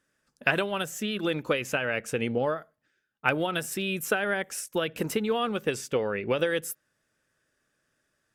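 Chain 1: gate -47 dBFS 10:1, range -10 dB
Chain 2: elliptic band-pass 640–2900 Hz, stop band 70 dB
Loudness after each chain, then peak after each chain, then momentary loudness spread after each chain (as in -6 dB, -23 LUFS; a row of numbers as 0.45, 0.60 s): -29.0, -32.5 LUFS; -7.5, -8.0 dBFS; 4, 9 LU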